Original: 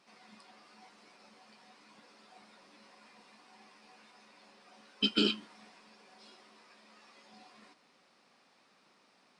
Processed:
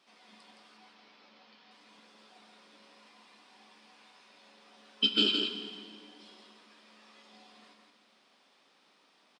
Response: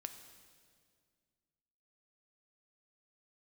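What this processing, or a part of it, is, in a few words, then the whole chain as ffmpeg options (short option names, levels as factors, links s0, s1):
PA in a hall: -filter_complex "[0:a]asettb=1/sr,asplit=3[s0][s1][s2];[s0]atrim=end=0.774[s3];[s1]atrim=start=0.77:end=1.71,asetpts=PTS-STARTPTS,afade=t=in:d=0.004:c=qsin,afade=t=out:st=0.936:d=0.004:c=qsin,lowpass=f=5300:w=0.5412,lowpass=f=5300:w=1.3066[s4];[s2]atrim=start=1.706[s5];[s3][s4]acrossfade=d=0.004:c1=hsin:c2=qsin[s6];[s6][s5]acrossfade=d=0.004:c1=qsin:c2=hsin,highpass=190,equalizer=f=3300:t=o:w=0.4:g=7.5,aecho=1:1:166:0.562[s7];[1:a]atrim=start_sample=2205[s8];[s7][s8]afir=irnorm=-1:irlink=0,volume=1.26"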